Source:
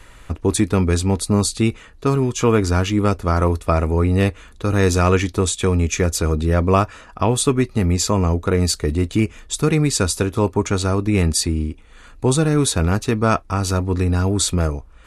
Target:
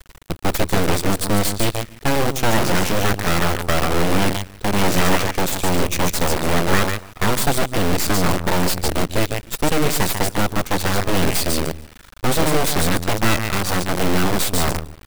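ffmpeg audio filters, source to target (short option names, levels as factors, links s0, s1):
-af "aecho=1:1:145|290|435:0.422|0.0717|0.0122,acrusher=bits=4:dc=4:mix=0:aa=0.000001,bandreject=f=6700:w=11,aeval=exprs='abs(val(0))':c=same"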